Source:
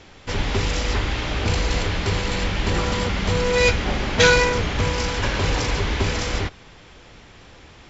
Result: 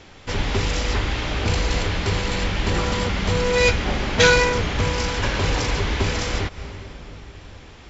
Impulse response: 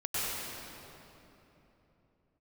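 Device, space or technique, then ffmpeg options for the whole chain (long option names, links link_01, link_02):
ducked reverb: -filter_complex "[0:a]asplit=3[link_01][link_02][link_03];[1:a]atrim=start_sample=2205[link_04];[link_02][link_04]afir=irnorm=-1:irlink=0[link_05];[link_03]apad=whole_len=348288[link_06];[link_05][link_06]sidechaincompress=threshold=-38dB:ratio=8:attack=10:release=113,volume=-18.5dB[link_07];[link_01][link_07]amix=inputs=2:normalize=0"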